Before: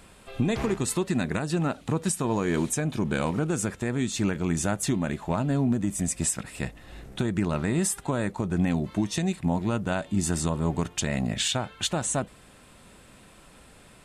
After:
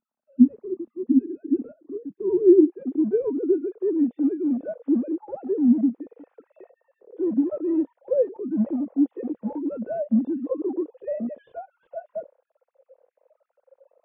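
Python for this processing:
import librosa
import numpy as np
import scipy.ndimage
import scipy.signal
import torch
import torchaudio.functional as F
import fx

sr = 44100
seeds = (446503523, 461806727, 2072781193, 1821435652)

p1 = fx.sine_speech(x, sr)
p2 = (np.mod(10.0 ** (24.5 / 20.0) * p1 + 1.0, 2.0) - 1.0) / 10.0 ** (24.5 / 20.0)
p3 = p1 + (p2 * 10.0 ** (-9.0 / 20.0))
p4 = fx.hpss(p3, sr, part='percussive', gain_db=-18)
p5 = fx.filter_sweep_lowpass(p4, sr, from_hz=230.0, to_hz=500.0, start_s=0.98, end_s=3.86, q=5.8)
y = p5 * 10.0 ** (-1.0 / 20.0)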